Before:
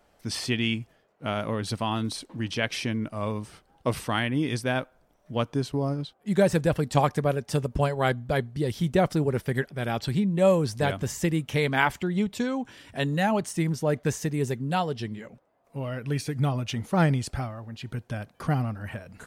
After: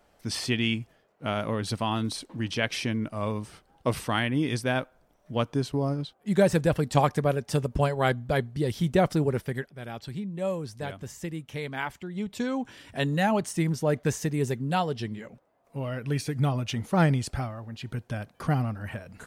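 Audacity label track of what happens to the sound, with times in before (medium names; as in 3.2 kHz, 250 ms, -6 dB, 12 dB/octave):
9.270000	12.560000	dip -9.5 dB, fades 0.44 s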